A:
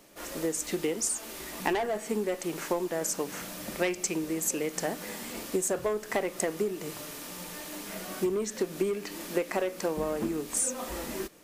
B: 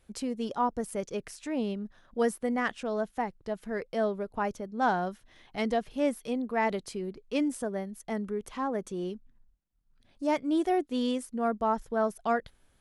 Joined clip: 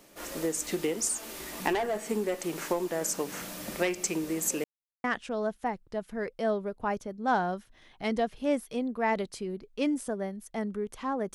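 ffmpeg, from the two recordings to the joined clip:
-filter_complex "[0:a]apad=whole_dur=11.34,atrim=end=11.34,asplit=2[s0][s1];[s0]atrim=end=4.64,asetpts=PTS-STARTPTS,afade=t=out:st=4.636:d=0.004:c=hsin[s2];[s1]atrim=start=4.64:end=5.04,asetpts=PTS-STARTPTS,volume=0[s3];[1:a]atrim=start=2.58:end=8.88,asetpts=PTS-STARTPTS,afade=t=in:d=0.004:c=hsin[s4];[s2][s3][s4]concat=n=3:v=0:a=1"

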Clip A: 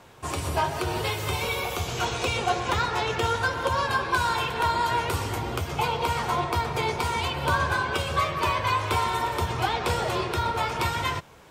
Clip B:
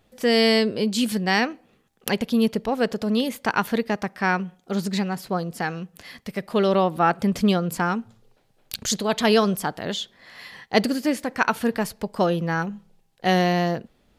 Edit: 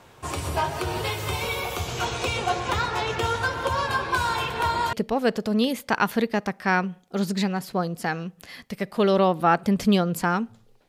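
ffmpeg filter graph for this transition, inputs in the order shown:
-filter_complex "[0:a]apad=whole_dur=10.88,atrim=end=10.88,atrim=end=4.932[s0];[1:a]atrim=start=2.488:end=8.44[s1];[s0][s1]acrossfade=d=0.004:c1=hsin:c2=hsin"

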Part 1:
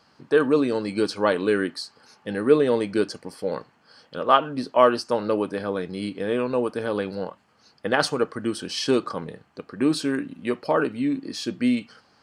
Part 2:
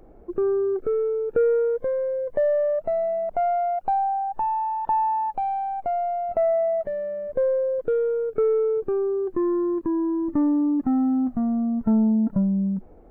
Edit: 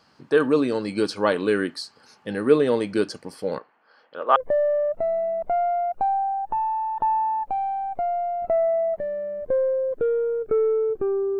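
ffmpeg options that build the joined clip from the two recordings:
-filter_complex "[0:a]asettb=1/sr,asplit=3[s0][s1][s2];[s0]atrim=end=3.584[s3];[s1]atrim=start=3.58:end=4.36,asetpts=PTS-STARTPTS,afade=t=in:d=0.004:c=qsin,afade=t=out:st=0.776:d=0.004:c=qsin,highpass=460,lowpass=2100[s4];[s2]atrim=start=4.356[s5];[s3][s4]acrossfade=d=0.004:c1=hsin:c2=qsin[s6];[s6][s5]acrossfade=d=0.004:c1=qsin:c2=hsin,apad=whole_dur=11.39,atrim=end=11.39,atrim=end=4.362[s7];[1:a]atrim=start=2.228:end=9.26[s8];[s7][s8]acrossfade=d=0.004:c1=hsin:c2=hsin"

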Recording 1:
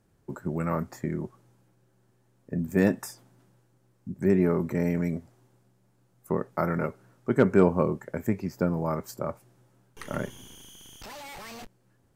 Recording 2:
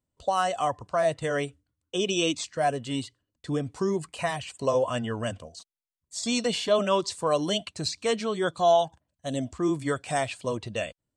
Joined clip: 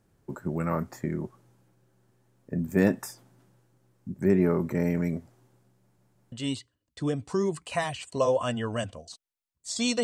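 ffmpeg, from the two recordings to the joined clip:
-filter_complex "[0:a]apad=whole_dur=10.03,atrim=end=10.03,asplit=3[s0][s1][s2];[s0]atrim=end=5.982[s3];[s1]atrim=start=5.808:end=5.982[s4];[s2]atrim=start=5.808:end=5.982[s5];[1:a]atrim=start=2.788:end=6.5[s6];[s3][s4]acrossfade=d=0.004:c1=hsin:c2=hsin[s7];[s7][s5]acrossfade=d=0.004:c1=hsin:c2=hsin[s8];[s8][s6]acrossfade=d=0.004:c1=hsin:c2=hsin"

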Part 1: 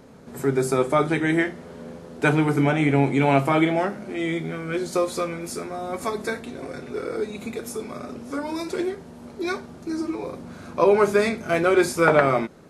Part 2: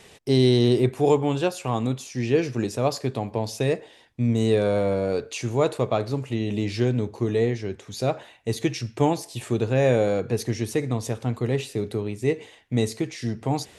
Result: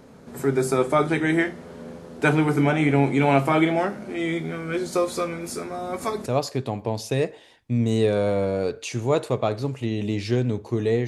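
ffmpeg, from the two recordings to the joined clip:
-filter_complex "[0:a]apad=whole_dur=11.07,atrim=end=11.07,atrim=end=6.262[s0];[1:a]atrim=start=2.748:end=7.56[s1];[s0][s1]acrossfade=d=0.004:c1=hsin:c2=hsin"

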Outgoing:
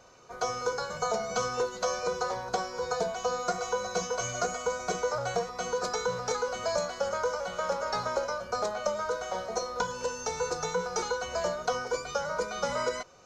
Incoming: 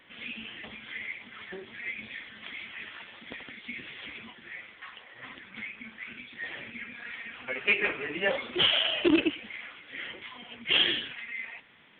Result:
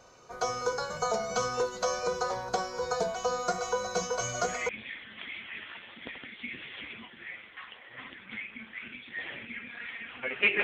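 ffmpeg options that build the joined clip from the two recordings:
-filter_complex "[0:a]apad=whole_dur=10.63,atrim=end=10.63,atrim=end=4.69,asetpts=PTS-STARTPTS[s0];[1:a]atrim=start=1.64:end=7.88,asetpts=PTS-STARTPTS[s1];[s0][s1]acrossfade=d=0.3:c1=log:c2=log"

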